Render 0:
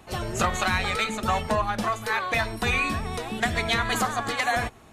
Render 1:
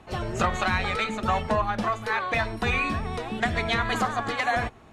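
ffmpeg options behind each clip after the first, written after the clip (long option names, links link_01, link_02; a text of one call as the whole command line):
ffmpeg -i in.wav -af "aemphasis=mode=reproduction:type=50fm" out.wav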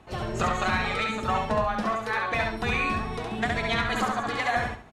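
ffmpeg -i in.wav -af "aecho=1:1:68|136|204|272:0.708|0.198|0.0555|0.0155,volume=-2.5dB" out.wav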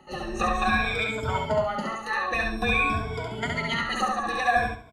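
ffmpeg -i in.wav -af "afftfilt=real='re*pow(10,20/40*sin(2*PI*(1.7*log(max(b,1)*sr/1024/100)/log(2)-(-0.52)*(pts-256)/sr)))':imag='im*pow(10,20/40*sin(2*PI*(1.7*log(max(b,1)*sr/1024/100)/log(2)-(-0.52)*(pts-256)/sr)))':win_size=1024:overlap=0.75,volume=-4dB" out.wav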